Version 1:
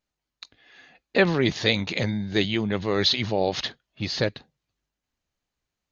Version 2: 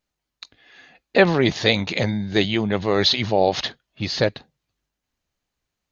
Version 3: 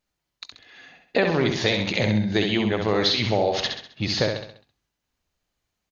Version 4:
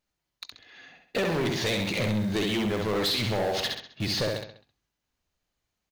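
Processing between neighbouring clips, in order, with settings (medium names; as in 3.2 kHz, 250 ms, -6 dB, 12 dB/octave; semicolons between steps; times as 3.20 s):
dynamic bell 720 Hz, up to +5 dB, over -37 dBFS, Q 1.5; trim +3 dB
compression 5:1, threshold -18 dBFS, peak gain reduction 9 dB; feedback delay 66 ms, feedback 44%, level -5 dB
in parallel at -10.5 dB: bit crusher 5-bit; on the sum: saturation -20 dBFS, distortion -9 dB; trim -2.5 dB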